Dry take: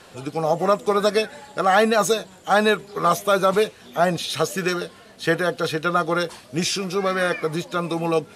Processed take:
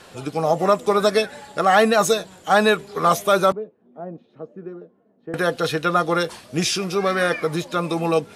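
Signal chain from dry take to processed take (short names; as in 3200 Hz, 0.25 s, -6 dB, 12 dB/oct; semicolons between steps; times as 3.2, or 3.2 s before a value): 3.52–5.34 ladder band-pass 300 Hz, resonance 25%; gain +1.5 dB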